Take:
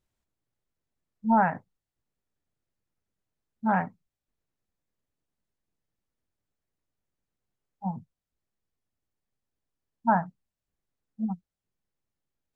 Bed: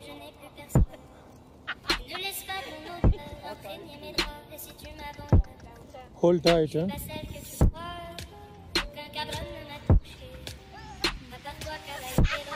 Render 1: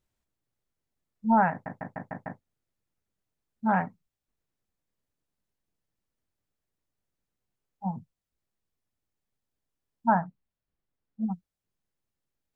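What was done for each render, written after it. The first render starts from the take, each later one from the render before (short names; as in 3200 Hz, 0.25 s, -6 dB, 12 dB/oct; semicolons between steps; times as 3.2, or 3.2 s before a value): 1.51 stutter in place 0.15 s, 6 plays; 10.14–11.22 air absorption 190 m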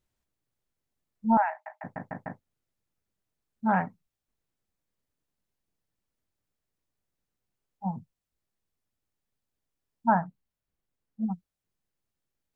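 1.37–1.84 rippled Chebyshev high-pass 610 Hz, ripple 6 dB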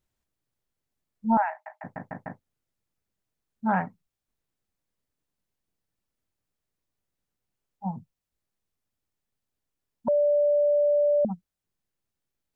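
10.08–11.25 bleep 585 Hz -18.5 dBFS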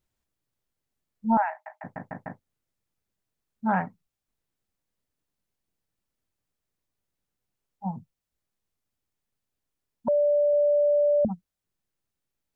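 10.53–11.28 bell 77 Hz +13 dB 1.6 oct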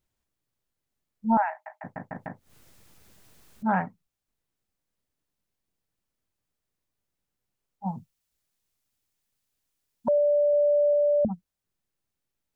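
2.16–3.72 upward compressor, threshold -33 dBFS; 7.86–10.18 high shelf 2100 Hz +8.5 dB; 10.93–11.33 air absorption 210 m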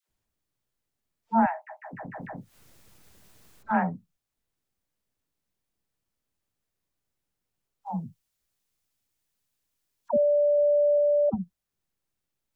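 dispersion lows, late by 94 ms, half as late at 610 Hz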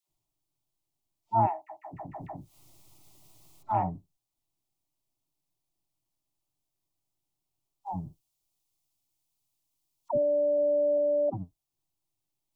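octaver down 1 oct, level -6 dB; fixed phaser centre 320 Hz, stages 8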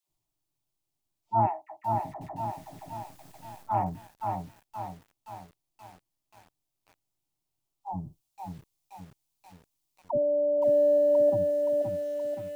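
lo-fi delay 0.523 s, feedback 55%, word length 9-bit, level -4 dB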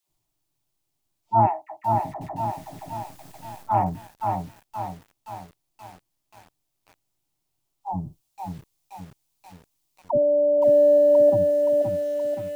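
gain +6 dB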